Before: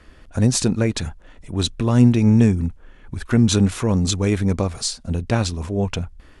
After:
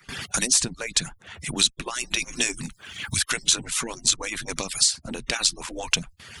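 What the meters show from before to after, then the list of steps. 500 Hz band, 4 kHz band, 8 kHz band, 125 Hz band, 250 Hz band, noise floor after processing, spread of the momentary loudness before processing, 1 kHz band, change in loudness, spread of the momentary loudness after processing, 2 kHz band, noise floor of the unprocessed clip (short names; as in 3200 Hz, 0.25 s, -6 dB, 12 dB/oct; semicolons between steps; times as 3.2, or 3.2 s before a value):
-12.0 dB, +5.0 dB, +6.5 dB, -20.5 dB, -18.5 dB, -57 dBFS, 15 LU, -4.0 dB, -4.0 dB, 14 LU, +4.5 dB, -48 dBFS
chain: median-filter separation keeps percussive; dynamic EQ 8800 Hz, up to +5 dB, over -38 dBFS, Q 0.71; AGC; gate with hold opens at -43 dBFS; passive tone stack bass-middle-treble 5-5-5; three-band squash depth 100%; gain +6 dB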